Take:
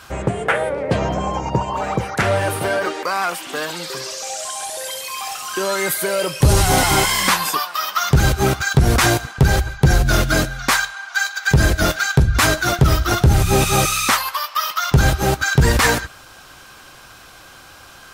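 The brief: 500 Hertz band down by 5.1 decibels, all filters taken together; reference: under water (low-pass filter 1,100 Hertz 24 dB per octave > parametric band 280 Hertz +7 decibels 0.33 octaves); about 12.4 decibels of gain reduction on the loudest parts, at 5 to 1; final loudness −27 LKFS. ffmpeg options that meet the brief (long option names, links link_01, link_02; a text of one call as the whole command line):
ffmpeg -i in.wav -af "equalizer=frequency=500:width_type=o:gain=-7.5,acompressor=threshold=-23dB:ratio=5,lowpass=frequency=1100:width=0.5412,lowpass=frequency=1100:width=1.3066,equalizer=frequency=280:width_type=o:width=0.33:gain=7,volume=3dB" out.wav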